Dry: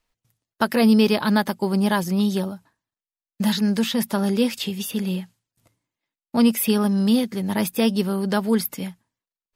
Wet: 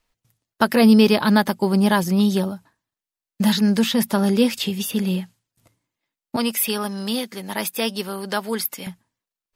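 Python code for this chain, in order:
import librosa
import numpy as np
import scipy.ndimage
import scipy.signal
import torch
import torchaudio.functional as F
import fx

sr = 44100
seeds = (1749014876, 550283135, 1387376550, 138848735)

y = fx.highpass(x, sr, hz=790.0, slope=6, at=(6.36, 8.87))
y = y * 10.0 ** (3.0 / 20.0)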